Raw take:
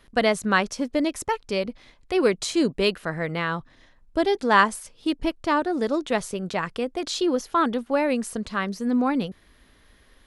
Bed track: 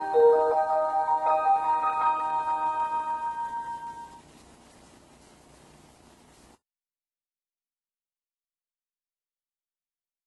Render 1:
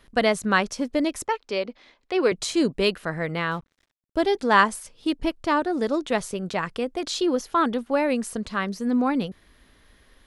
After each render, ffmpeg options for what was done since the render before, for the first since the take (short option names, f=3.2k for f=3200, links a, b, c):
-filter_complex "[0:a]asettb=1/sr,asplit=3[a][b][c];[a]atrim=end=1.274[d];[b]atrim=start=1.27:end=2.32,asetpts=PTS-STARTPTS,afade=t=in:d=0.004:c=qsin,afade=t=out:st=1.046:d=0.004:c=qsin,acrossover=split=240 6500:gain=0.158 1 0.158[e][f][g];[e][f][g]amix=inputs=3:normalize=0[h];[c]atrim=start=2.316[i];[d][h]acrossfade=d=0.004:c1=hsin:c2=qsin[j];[j][i]acrossfade=d=0.004:c1=qsin:c2=hsin,asettb=1/sr,asplit=3[k][l][m];[k]atrim=end=3.514[n];[l]atrim=start=3.51:end=4.25,asetpts=PTS-STARTPTS,afade=t=in:d=0.004:c=qsin,afade=t=out:st=0.736:d=0.004:c=qsin,aeval=exprs='sgn(val(0))*max(abs(val(0))-0.00355,0)':c=same[o];[m]atrim=start=4.246[p];[n][o]acrossfade=d=0.004:c1=hsin:c2=qsin[q];[q][p]acrossfade=d=0.004:c1=qsin:c2=hsin"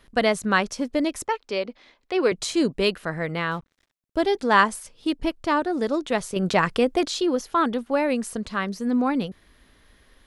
-filter_complex "[0:a]asettb=1/sr,asplit=3[a][b][c];[a]atrim=end=6.364[d];[b]atrim=start=6.36:end=7.06,asetpts=PTS-STARTPTS,afade=t=in:d=0.004:c=qsin,afade=t=out:st=0.696:d=0.004:c=qsin,acontrast=83[e];[c]atrim=start=7.056[f];[d][e]acrossfade=d=0.004:c1=hsin:c2=qsin[g];[g][f]acrossfade=d=0.004:c1=qsin:c2=hsin"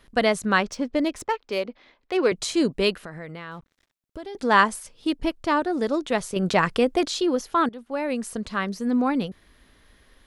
-filter_complex "[0:a]asettb=1/sr,asplit=3[a][b][c];[a]atrim=end=0.624[d];[b]atrim=start=0.62:end=2.26,asetpts=PTS-STARTPTS,afade=t=in:d=0.004:c=qsin,afade=t=out:st=1.636:d=0.004:c=qsin,adynamicsmooth=sensitivity=5.5:basefreq=4.9k[e];[c]atrim=start=2.256[f];[d][e]acrossfade=d=0.004:c1=hsin:c2=qsin[g];[g][f]acrossfade=d=0.004:c1=qsin:c2=hsin,asettb=1/sr,asplit=3[h][i][j];[h]atrim=end=2.924[k];[i]atrim=start=2.92:end=4.35,asetpts=PTS-STARTPTS,afade=t=in:d=0.004:c=qsin,afade=t=out:st=1.426:d=0.004:c=qsin,acompressor=threshold=-34dB:ratio=5:attack=3.2:release=140:knee=1:detection=peak[l];[j]atrim=start=4.346[m];[k][l]acrossfade=d=0.004:c1=hsin:c2=qsin[n];[n][m]acrossfade=d=0.004:c1=qsin:c2=hsin,asplit=2[o][p];[o]atrim=end=7.69,asetpts=PTS-STARTPTS,afade=t=out:st=7.686:d=0.004:c=hsin:silence=0.133352[q];[p]atrim=start=7.69,asetpts=PTS-STARTPTS,afade=t=in:d=0.95:c=qsin:silence=0.133352[r];[q][r]concat=n=2:v=0:a=1"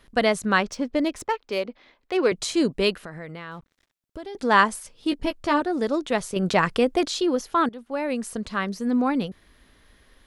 -filter_complex "[0:a]asettb=1/sr,asplit=3[a][b][c];[a]atrim=end=5.104[d];[b]atrim=start=5.1:end=5.61,asetpts=PTS-STARTPTS,afade=t=in:d=0.004:c=qsin,afade=t=out:st=0.506:d=0.004:c=qsin,asplit=2[e][f];[f]adelay=14,volume=-6dB[g];[e][g]amix=inputs=2:normalize=0,atrim=end_sample=22491[h];[c]atrim=start=5.606[i];[d][h]acrossfade=d=0.004:c1=hsin:c2=qsin[j];[j][i]acrossfade=d=0.004:c1=qsin:c2=hsin"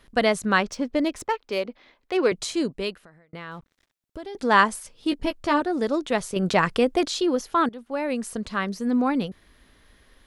-filter_complex "[0:a]asplit=2[a][b];[a]atrim=end=3.33,asetpts=PTS-STARTPTS,afade=t=out:st=2.25:d=1.08[c];[b]atrim=start=3.33,asetpts=PTS-STARTPTS,afade=t=in:d=0.004:c=hsin[d];[c][d]concat=n=2:v=0:a=1"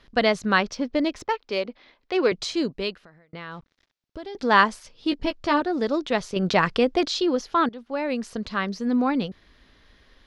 -af "highshelf=f=7k:t=q:w=1.5:g=-11.5"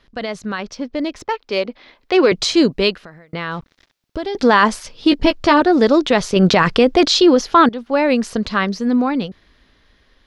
-af "alimiter=limit=-15dB:level=0:latency=1:release=38,dynaudnorm=f=210:g=17:m=14dB"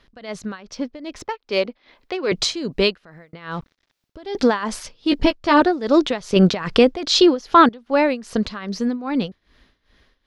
-af "tremolo=f=2.5:d=0.86"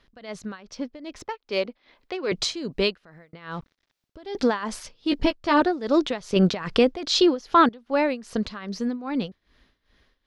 -af "volume=-5dB"